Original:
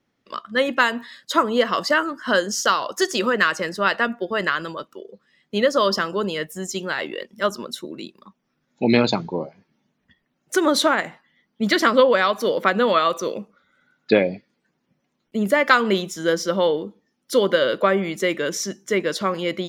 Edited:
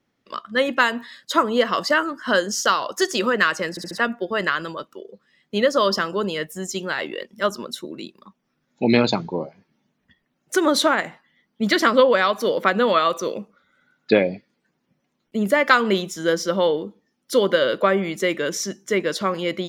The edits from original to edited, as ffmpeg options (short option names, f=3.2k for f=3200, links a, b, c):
-filter_complex "[0:a]asplit=5[a][b][c][d][e];[a]atrim=end=3.772[f];[b]atrim=start=3.698:end=3.772[g];[c]atrim=start=3.698:end=3.772[h];[d]atrim=start=3.698:end=3.772[i];[e]atrim=start=3.978[j];[f][g]acrossfade=d=0.004:c1=hsin:c2=hsin[k];[k][h]acrossfade=d=0.004:c1=hsin:c2=hsin[l];[l][i]acrossfade=d=0.004:c1=hsin:c2=hsin[m];[m][j]acrossfade=d=0.004:c1=hsin:c2=hsin"